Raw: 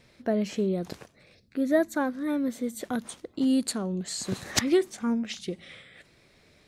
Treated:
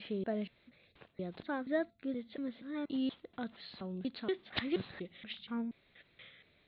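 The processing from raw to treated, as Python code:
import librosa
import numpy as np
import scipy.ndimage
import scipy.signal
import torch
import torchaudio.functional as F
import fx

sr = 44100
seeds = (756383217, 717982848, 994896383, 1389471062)

y = fx.block_reorder(x, sr, ms=238.0, group=3)
y = scipy.signal.sosfilt(scipy.signal.butter(12, 3900.0, 'lowpass', fs=sr, output='sos'), y)
y = fx.high_shelf(y, sr, hz=3000.0, db=10.0)
y = fx.comb_fb(y, sr, f0_hz=680.0, decay_s=0.28, harmonics='all', damping=0.0, mix_pct=40)
y = F.gain(torch.from_numpy(y), -6.5).numpy()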